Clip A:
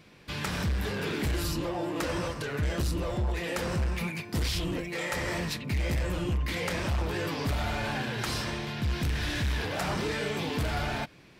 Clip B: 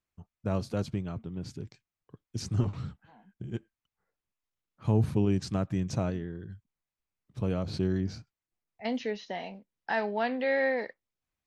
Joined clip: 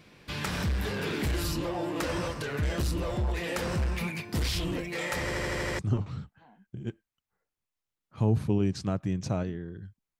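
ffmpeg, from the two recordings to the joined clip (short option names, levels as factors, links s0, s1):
-filter_complex "[0:a]apad=whole_dur=10.19,atrim=end=10.19,asplit=7[s0][s1][s2][s3][s4][s5][s6];[s0]atrim=end=5.312[s7];[s1]atrim=start=5.228:end=5.312[s8];[s2]atrim=start=5.228:end=5.312[s9];[s3]atrim=start=5.228:end=5.312[s10];[s4]atrim=start=5.228:end=5.312[s11];[s5]atrim=start=5.228:end=5.312[s12];[s6]atrim=start=5.228:end=5.312[s13];[1:a]atrim=start=2.458:end=6.86[s14];[s7][s8]acrossfade=d=0.004:c1=hsin:c2=hsin[s15];[s15][s9]acrossfade=d=0.004:c1=hsin:c2=hsin[s16];[s16][s10]acrossfade=d=0.004:c1=hsin:c2=hsin[s17];[s17][s11]acrossfade=d=0.004:c1=hsin:c2=hsin[s18];[s18][s12]acrossfade=d=0.004:c1=hsin:c2=hsin[s19];[s19][s13]acrossfade=d=0.004:c1=hsin:c2=hsin[s20];[s20][s14]acrossfade=d=0.004:c1=hsin:c2=hsin"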